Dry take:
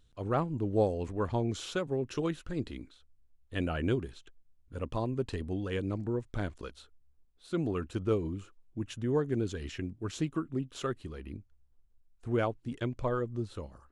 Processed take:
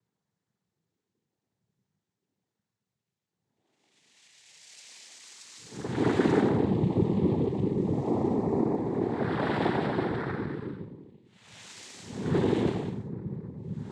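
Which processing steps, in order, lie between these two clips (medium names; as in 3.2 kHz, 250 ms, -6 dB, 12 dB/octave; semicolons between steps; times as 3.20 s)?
wow and flutter 71 cents; Paulstretch 15×, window 0.05 s, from 7.13 s; noise-vocoded speech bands 6; trim +5 dB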